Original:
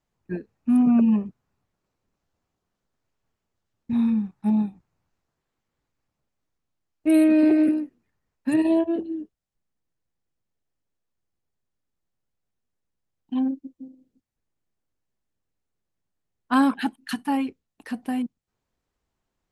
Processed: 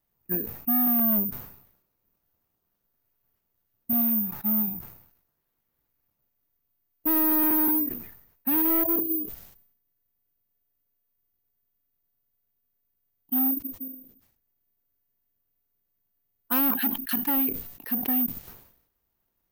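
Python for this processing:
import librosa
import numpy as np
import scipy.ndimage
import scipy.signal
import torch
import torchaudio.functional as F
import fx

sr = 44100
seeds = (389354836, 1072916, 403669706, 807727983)

y = fx.low_shelf(x, sr, hz=430.0, db=-6.0, at=(4.01, 4.68))
y = np.clip(y, -10.0 ** (-24.0 / 20.0), 10.0 ** (-24.0 / 20.0))
y = (np.kron(scipy.signal.resample_poly(y, 1, 3), np.eye(3)[0]) * 3)[:len(y)]
y = fx.sustainer(y, sr, db_per_s=79.0)
y = F.gain(torch.from_numpy(y), -2.0).numpy()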